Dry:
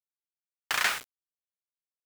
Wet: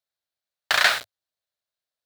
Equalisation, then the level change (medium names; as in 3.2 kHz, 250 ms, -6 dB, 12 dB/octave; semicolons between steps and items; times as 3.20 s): fifteen-band graphic EQ 100 Hz +9 dB, 630 Hz +12 dB, 1.6 kHz +7 dB, 4 kHz +11 dB; +1.5 dB